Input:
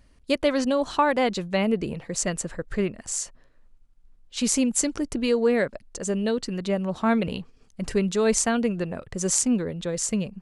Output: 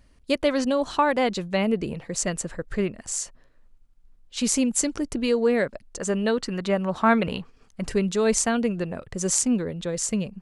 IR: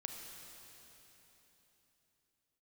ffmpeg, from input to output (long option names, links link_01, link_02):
-filter_complex "[0:a]asettb=1/sr,asplit=3[link_01][link_02][link_03];[link_01]atrim=end=5.984[link_04];[link_02]atrim=start=5.98:end=7.84,asetpts=PTS-STARTPTS,afade=type=in:duration=0.004:curve=qsin,afade=type=out:start_time=1.856:duration=0.004:curve=qsin,equalizer=frequency=1300:width_type=o:width=1.9:gain=7[link_05];[link_03]atrim=start=7.836[link_06];[link_04][link_05]acrossfade=duration=0.004:curve1=hsin:curve2=qsin[link_07];[link_07][link_06]acrossfade=duration=0.004:curve1=qsin:curve2=hsin"